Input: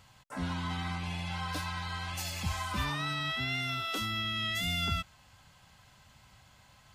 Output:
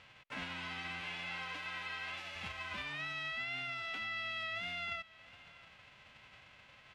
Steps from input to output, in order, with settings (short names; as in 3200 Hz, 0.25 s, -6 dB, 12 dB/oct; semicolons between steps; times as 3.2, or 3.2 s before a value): spectral whitening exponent 0.3; 1.01–2.36 HPF 170 Hz 6 dB/oct; compressor 6:1, threshold -41 dBFS, peak gain reduction 13.5 dB; synth low-pass 2600 Hz, resonance Q 2.1; on a send: echo 0.675 s -21 dB